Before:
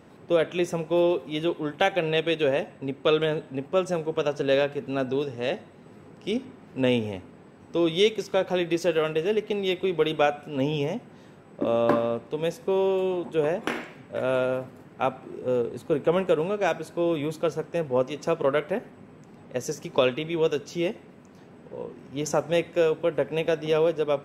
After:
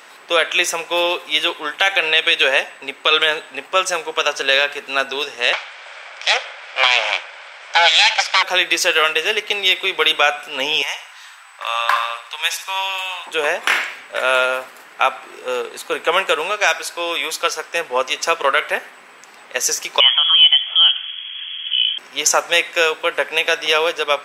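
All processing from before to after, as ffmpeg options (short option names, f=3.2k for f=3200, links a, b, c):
-filter_complex "[0:a]asettb=1/sr,asplit=3[a][b][c];[a]atrim=end=5.534[d];[b]atrim=start=5.53:end=8.43,asetpts=PTS-STARTPTS,afade=t=in:d=0.004:c=qsin,afade=t=out:st=2.896:d=0.004:c=qsin,aeval=exprs='abs(val(0))':c=same,highpass=450,equalizer=f=570:t=q:w=4:g=10,equalizer=f=830:t=q:w=4:g=5,equalizer=f=1.5k:t=q:w=4:g=7,equalizer=f=2.3k:t=q:w=4:g=9,equalizer=f=3.3k:t=q:w=4:g=7,equalizer=f=5.1k:t=q:w=4:g=4,lowpass=f=7.6k:w=0.5412,lowpass=f=7.6k:w=1.3066[e];[c]atrim=start=8.426[f];[d][e]acrossfade=d=0.004:c1=hsin:c2=qsin[g];[g][f]acrossfade=d=0.004:c1=qsin:c2=hsin,asettb=1/sr,asplit=3[h][i][j];[h]atrim=end=10.824[k];[i]atrim=start=10.82:end=13.27,asetpts=PTS-STARTPTS,afade=t=in:d=0.004:c=qsin,afade=t=out:st=2.446:d=0.004:c=qsin,highpass=f=850:w=0.5412,highpass=f=850:w=1.3066,aecho=1:1:68|136|204|272:0.251|0.111|0.0486|0.0214,atrim=end_sample=108045[l];[j]atrim=start=13.266[m];[k][l]acrossfade=d=0.004:c1=hsin:c2=qsin[n];[n][m]acrossfade=d=0.004:c1=qsin:c2=hsin,asettb=1/sr,asplit=3[o][p][q];[o]atrim=end=16.514[r];[p]atrim=start=16.51:end=17.73,asetpts=PTS-STARTPTS,afade=t=in:d=0.004:c=qsin,afade=t=out:st=1.216:d=0.004:c=qsin,highpass=f=350:p=1,equalizer=f=5.2k:w=4.2:g=4.5[s];[q]atrim=start=17.726[t];[r][s]acrossfade=d=0.004:c1=hsin:c2=qsin[u];[u][t]acrossfade=d=0.004:c1=qsin:c2=hsin,asettb=1/sr,asplit=3[v][w][x];[v]atrim=end=20.004[y];[w]atrim=start=20:end=21.98,asetpts=PTS-STARTPTS,afade=t=in:d=0.004:c=qsin,afade=t=out:st=1.976:d=0.004:c=qsin,acompressor=threshold=-32dB:ratio=2:attack=3.2:release=140:knee=1:detection=peak,lowpass=f=3k:t=q:w=0.5098,lowpass=f=3k:t=q:w=0.6013,lowpass=f=3k:t=q:w=0.9,lowpass=f=3k:t=q:w=2.563,afreqshift=-3500,asubboost=boost=10:cutoff=160[z];[x]atrim=start=21.976[aa];[y][z]acrossfade=d=0.004:c1=hsin:c2=qsin[ab];[ab][aa]acrossfade=d=0.004:c1=qsin:c2=hsin,highpass=1.4k,alimiter=level_in=21dB:limit=-1dB:release=50:level=0:latency=1,volume=-1dB"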